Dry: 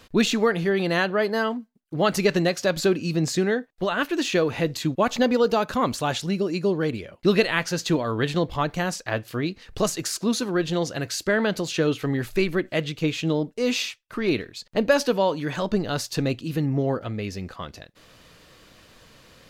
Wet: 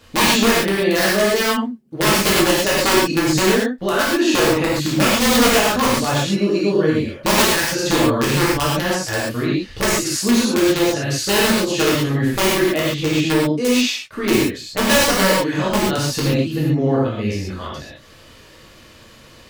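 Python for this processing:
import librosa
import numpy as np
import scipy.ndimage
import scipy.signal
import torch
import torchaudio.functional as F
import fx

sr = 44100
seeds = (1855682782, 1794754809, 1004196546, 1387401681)

y = (np.mod(10.0 ** (13.5 / 20.0) * x + 1.0, 2.0) - 1.0) / 10.0 ** (13.5 / 20.0)
y = fx.rev_gated(y, sr, seeds[0], gate_ms=160, shape='flat', drr_db=-7.0)
y = y * librosa.db_to_amplitude(-1.0)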